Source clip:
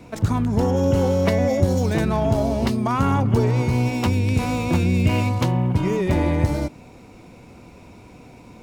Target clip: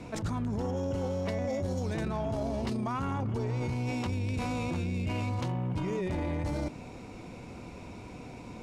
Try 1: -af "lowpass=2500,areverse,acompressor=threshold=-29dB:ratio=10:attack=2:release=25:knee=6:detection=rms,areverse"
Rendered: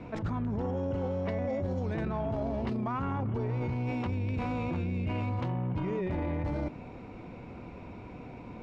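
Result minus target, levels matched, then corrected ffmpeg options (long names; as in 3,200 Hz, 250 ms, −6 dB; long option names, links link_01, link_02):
8,000 Hz band −17.5 dB
-af "lowpass=9500,areverse,acompressor=threshold=-29dB:ratio=10:attack=2:release=25:knee=6:detection=rms,areverse"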